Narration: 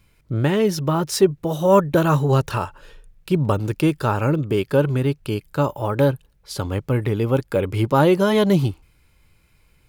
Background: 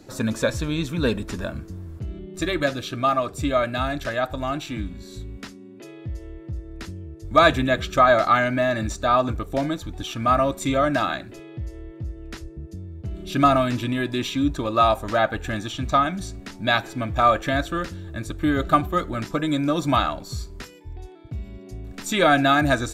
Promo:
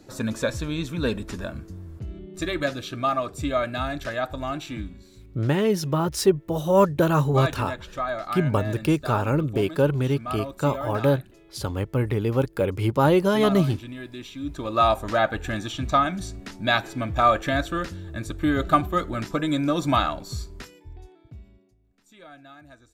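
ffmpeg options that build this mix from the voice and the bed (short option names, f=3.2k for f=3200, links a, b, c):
-filter_complex "[0:a]adelay=5050,volume=-3dB[a];[1:a]volume=8.5dB,afade=t=out:st=4.78:d=0.32:silence=0.334965,afade=t=in:st=14.39:d=0.47:silence=0.266073,afade=t=out:st=20.37:d=1.38:silence=0.0375837[b];[a][b]amix=inputs=2:normalize=0"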